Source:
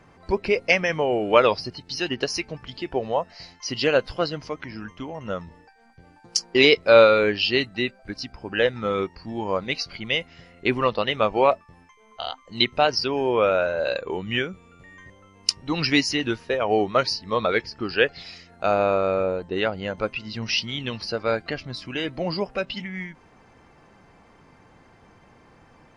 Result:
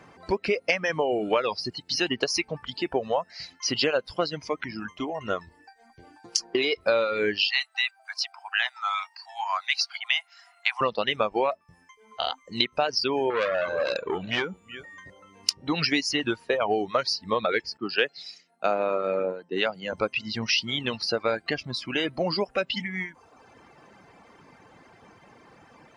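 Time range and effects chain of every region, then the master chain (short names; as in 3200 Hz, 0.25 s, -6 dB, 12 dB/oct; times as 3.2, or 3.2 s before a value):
4.98–6.85 comb 2.8 ms, depth 43% + compressor 4:1, threshold -19 dBFS
7.48–10.81 steep high-pass 700 Hz 96 dB/oct + high shelf 4500 Hz +3.5 dB
13.3–15.61 echo 0.372 s -19 dB + core saturation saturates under 3100 Hz
17.77–19.93 HPF 140 Hz 24 dB/oct + three-band expander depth 70%
whole clip: reverb removal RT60 0.81 s; compressor 8:1, threshold -24 dBFS; HPF 190 Hz 6 dB/oct; gain +4 dB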